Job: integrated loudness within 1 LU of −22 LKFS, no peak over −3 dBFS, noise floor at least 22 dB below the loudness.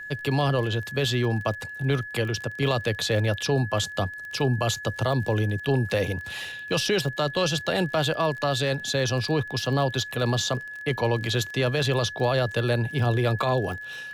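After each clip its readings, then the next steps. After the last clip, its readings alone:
crackle rate 30 per second; interfering tone 1,700 Hz; level of the tone −35 dBFS; integrated loudness −25.5 LKFS; sample peak −12.5 dBFS; target loudness −22.0 LKFS
→ click removal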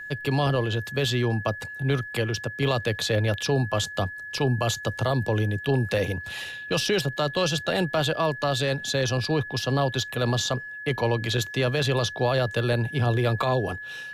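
crackle rate 0 per second; interfering tone 1,700 Hz; level of the tone −35 dBFS
→ notch filter 1,700 Hz, Q 30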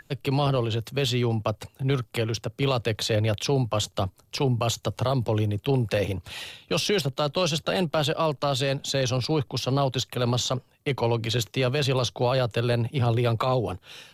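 interfering tone none found; integrated loudness −26.0 LKFS; sample peak −13.0 dBFS; target loudness −22.0 LKFS
→ level +4 dB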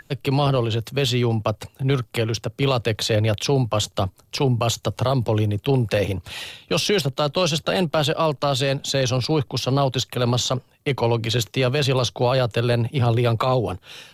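integrated loudness −22.0 LKFS; sample peak −9.0 dBFS; background noise floor −57 dBFS

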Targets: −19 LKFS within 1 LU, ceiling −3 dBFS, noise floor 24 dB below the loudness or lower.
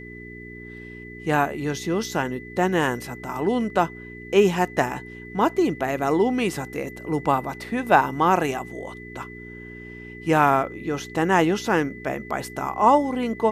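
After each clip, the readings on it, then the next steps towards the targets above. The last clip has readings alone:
mains hum 60 Hz; hum harmonics up to 420 Hz; level of the hum −40 dBFS; interfering tone 2,000 Hz; level of the tone −41 dBFS; integrated loudness −23.0 LKFS; sample peak −1.5 dBFS; target loudness −19.0 LKFS
→ hum removal 60 Hz, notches 7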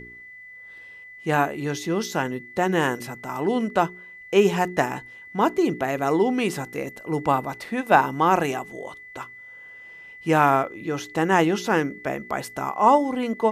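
mains hum none found; interfering tone 2,000 Hz; level of the tone −41 dBFS
→ notch filter 2,000 Hz, Q 30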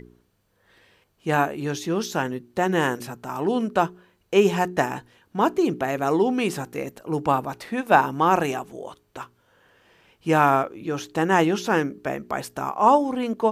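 interfering tone none found; integrated loudness −23.5 LKFS; sample peak −2.5 dBFS; target loudness −19.0 LKFS
→ level +4.5 dB
brickwall limiter −3 dBFS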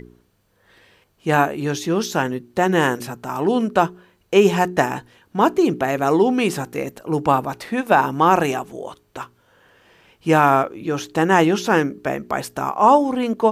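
integrated loudness −19.5 LKFS; sample peak −3.0 dBFS; background noise floor −62 dBFS

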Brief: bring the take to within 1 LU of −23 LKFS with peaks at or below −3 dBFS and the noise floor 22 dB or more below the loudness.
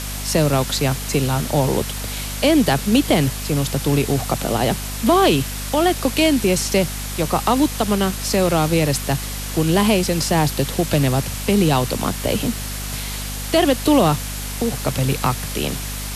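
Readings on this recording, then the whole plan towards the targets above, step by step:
mains hum 50 Hz; hum harmonics up to 250 Hz; level of the hum −27 dBFS; background noise floor −28 dBFS; target noise floor −42 dBFS; integrated loudness −19.5 LKFS; sample peak −4.0 dBFS; target loudness −23.0 LKFS
→ hum removal 50 Hz, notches 5
broadband denoise 14 dB, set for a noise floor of −28 dBFS
level −3.5 dB

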